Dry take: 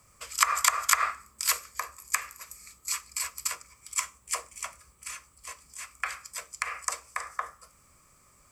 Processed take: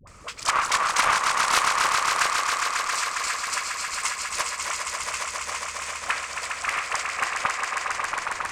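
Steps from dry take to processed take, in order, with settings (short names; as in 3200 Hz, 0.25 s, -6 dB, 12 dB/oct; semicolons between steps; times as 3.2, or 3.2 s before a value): sample leveller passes 3; high shelf 9200 Hz +10.5 dB; in parallel at -0.5 dB: compressor, threshold -25 dBFS, peak gain reduction 17 dB; on the sum: notches 60/120/180/240/300/360/420/480 Hz; upward compressor, threshold -18 dBFS; air absorption 120 m; dispersion highs, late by 74 ms, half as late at 560 Hz; on a send: swelling echo 0.136 s, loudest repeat 5, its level -5.5 dB; on the sum: Doppler distortion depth 0.5 ms; gain -6.5 dB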